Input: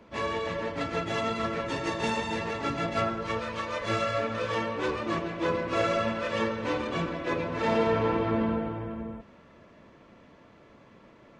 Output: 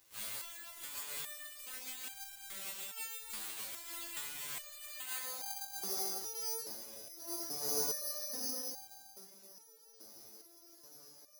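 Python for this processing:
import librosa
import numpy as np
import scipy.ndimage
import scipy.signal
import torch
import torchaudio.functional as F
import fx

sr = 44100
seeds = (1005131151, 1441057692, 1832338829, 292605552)

p1 = fx.delta_mod(x, sr, bps=64000, step_db=-39.5)
p2 = scipy.signal.sosfilt(scipy.signal.butter(2, 59.0, 'highpass', fs=sr, output='sos'), p1)
p3 = fx.low_shelf(p2, sr, hz=86.0, db=7.5)
p4 = fx.vowel_filter(p3, sr, vowel='i', at=(6.65, 7.16), fade=0.02)
p5 = p4 + fx.echo_split(p4, sr, split_hz=1800.0, low_ms=106, high_ms=498, feedback_pct=52, wet_db=-6.0, dry=0)
p6 = np.abs(p5)
p7 = fx.filter_sweep_bandpass(p6, sr, from_hz=5100.0, to_hz=380.0, start_s=4.71, end_s=5.86, q=0.96)
p8 = (np.kron(p7[::8], np.eye(8)[0]) * 8)[:len(p7)]
p9 = fx.resonator_held(p8, sr, hz=2.4, low_hz=110.0, high_hz=790.0)
y = F.gain(torch.from_numpy(p9), 1.0).numpy()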